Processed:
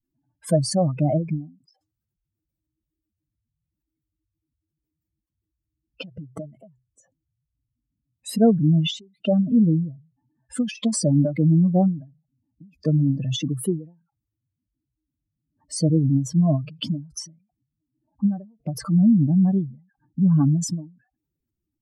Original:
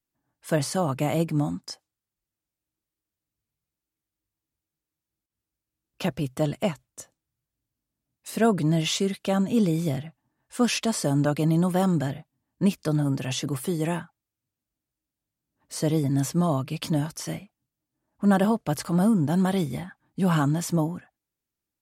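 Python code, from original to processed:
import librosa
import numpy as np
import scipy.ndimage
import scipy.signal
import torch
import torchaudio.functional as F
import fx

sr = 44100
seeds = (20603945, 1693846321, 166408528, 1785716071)

y = fx.spec_expand(x, sr, power=2.8)
y = fx.end_taper(y, sr, db_per_s=150.0)
y = y * librosa.db_to_amplitude(5.5)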